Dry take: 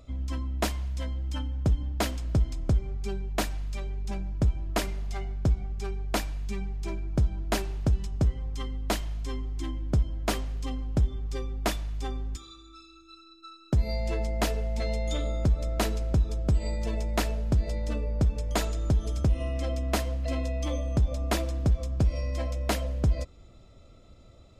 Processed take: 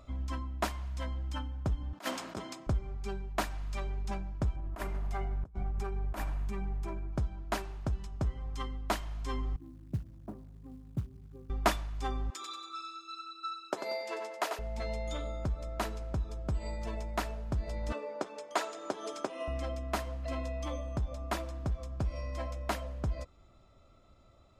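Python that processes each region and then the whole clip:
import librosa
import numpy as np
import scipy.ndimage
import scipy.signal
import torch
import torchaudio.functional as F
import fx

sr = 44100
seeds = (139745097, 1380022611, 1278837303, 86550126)

y = fx.chain(x, sr, fx.bessel_highpass(hz=290.0, order=4),
    fx.over_compress(threshold_db=-36.0, ratio=-0.5), at=(1.93, 2.67))
y = fx.chain(y, sr, fx.peak_eq(hz=4700.0, db=-9.5, octaves=2.1),
    fx.over_compress(threshold_db=-32.0, ratio=-0.5), at=(4.56, 7.13))
y = fx.chain(y, sr, fx.ladder_bandpass(hz=150.0, resonance_pct=25),
    fx.quant_float(bits=4), at=(9.56, 11.5))
y = fx.chain(y, sr, fx.highpass(hz=370.0, slope=24),
    fx.echo_feedback(ms=93, feedback_pct=39, wet_db=-6), at=(12.3, 14.59))
y = fx.chain(y, sr, fx.highpass(hz=320.0, slope=24),
    fx.peak_eq(hz=13000.0, db=-9.5, octaves=0.44), at=(17.92, 19.48))
y = fx.peak_eq(y, sr, hz=1100.0, db=9.0, octaves=1.6)
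y = fx.notch(y, sr, hz=480.0, q=12.0)
y = fx.rider(y, sr, range_db=10, speed_s=0.5)
y = y * 10.0 ** (-7.5 / 20.0)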